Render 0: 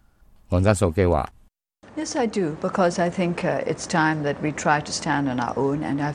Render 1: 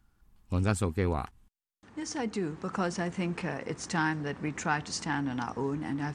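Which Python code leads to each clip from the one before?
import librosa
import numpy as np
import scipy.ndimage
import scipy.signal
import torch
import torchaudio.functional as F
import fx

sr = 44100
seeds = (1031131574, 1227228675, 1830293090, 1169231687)

y = fx.peak_eq(x, sr, hz=590.0, db=-11.0, octaves=0.56)
y = y * 10.0 ** (-7.5 / 20.0)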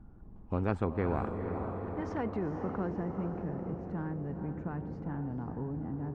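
y = fx.filter_sweep_lowpass(x, sr, from_hz=570.0, to_hz=180.0, start_s=2.13, end_s=3.4, q=0.93)
y = fx.echo_diffused(y, sr, ms=459, feedback_pct=52, wet_db=-10)
y = fx.spectral_comp(y, sr, ratio=2.0)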